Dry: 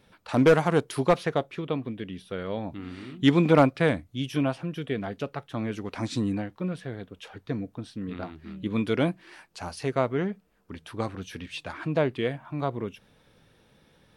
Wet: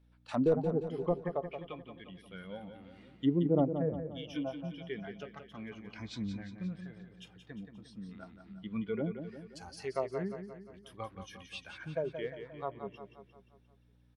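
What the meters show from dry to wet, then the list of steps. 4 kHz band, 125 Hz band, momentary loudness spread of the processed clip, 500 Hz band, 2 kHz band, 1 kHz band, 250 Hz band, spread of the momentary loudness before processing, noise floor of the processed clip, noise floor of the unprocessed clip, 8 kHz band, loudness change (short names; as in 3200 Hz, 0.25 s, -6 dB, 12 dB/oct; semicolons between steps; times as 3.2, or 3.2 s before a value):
-12.0 dB, -10.0 dB, 20 LU, -9.0 dB, -15.0 dB, -12.5 dB, -9.0 dB, 18 LU, -65 dBFS, -63 dBFS, -13.0 dB, -9.0 dB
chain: treble ducked by the level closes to 570 Hz, closed at -19 dBFS; hum 60 Hz, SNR 17 dB; spectral noise reduction 12 dB; on a send: feedback echo 0.176 s, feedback 52%, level -8.5 dB; on the sum: gain -7 dB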